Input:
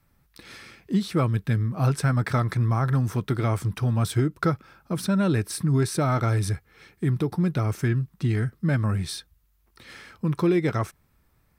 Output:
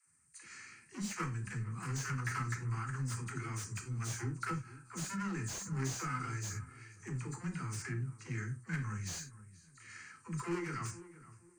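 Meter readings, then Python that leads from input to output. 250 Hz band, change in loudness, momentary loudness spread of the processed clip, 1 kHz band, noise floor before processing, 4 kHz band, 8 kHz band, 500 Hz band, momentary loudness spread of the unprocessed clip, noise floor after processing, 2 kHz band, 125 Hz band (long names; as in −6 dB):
−17.0 dB, −14.5 dB, 14 LU, −11.5 dB, −65 dBFS, −11.5 dB, −4.0 dB, −20.0 dB, 10 LU, −63 dBFS, −8.0 dB, −15.5 dB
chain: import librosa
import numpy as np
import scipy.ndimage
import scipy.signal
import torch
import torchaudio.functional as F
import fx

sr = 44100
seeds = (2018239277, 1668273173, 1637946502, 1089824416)

p1 = fx.freq_compress(x, sr, knee_hz=3300.0, ratio=1.5)
p2 = scipy.signal.sosfilt(scipy.signal.butter(4, 68.0, 'highpass', fs=sr, output='sos'), p1)
p3 = fx.spec_box(p2, sr, start_s=3.78, length_s=0.22, low_hz=400.0, high_hz=3200.0, gain_db=-11)
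p4 = fx.level_steps(p3, sr, step_db=21)
p5 = p3 + (p4 * librosa.db_to_amplitude(0.5))
p6 = 10.0 ** (-19.0 / 20.0) * np.tanh(p5 / 10.0 ** (-19.0 / 20.0))
p7 = F.preemphasis(torch.from_numpy(p6), 0.9).numpy()
p8 = fx.fixed_phaser(p7, sr, hz=1500.0, stages=4)
p9 = fx.dispersion(p8, sr, late='lows', ms=76.0, hz=350.0)
p10 = p9 + fx.echo_filtered(p9, sr, ms=471, feedback_pct=27, hz=1400.0, wet_db=-15.5, dry=0)
p11 = fx.rev_gated(p10, sr, seeds[0], gate_ms=120, shape='falling', drr_db=4.0)
p12 = fx.slew_limit(p11, sr, full_power_hz=29.0)
y = p12 * librosa.db_to_amplitude(4.5)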